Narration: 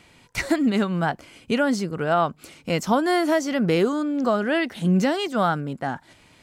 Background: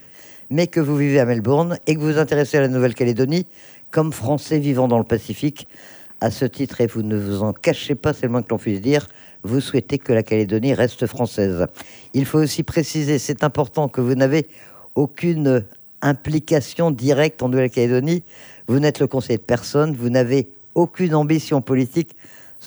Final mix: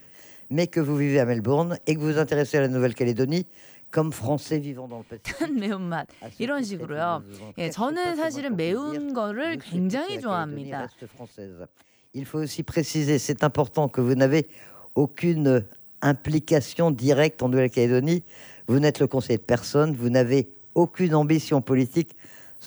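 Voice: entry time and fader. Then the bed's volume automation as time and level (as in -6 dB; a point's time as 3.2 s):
4.90 s, -5.5 dB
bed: 4.52 s -5.5 dB
4.82 s -21.5 dB
11.82 s -21.5 dB
12.92 s -3.5 dB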